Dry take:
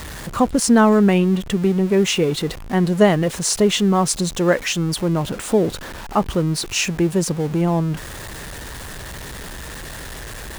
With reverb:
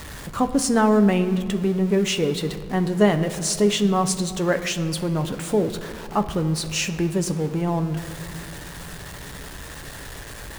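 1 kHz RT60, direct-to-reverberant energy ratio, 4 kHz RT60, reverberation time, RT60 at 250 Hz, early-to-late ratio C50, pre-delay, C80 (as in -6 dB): 1.9 s, 7.5 dB, 1.2 s, 2.1 s, 3.0 s, 12.0 dB, 7 ms, 13.5 dB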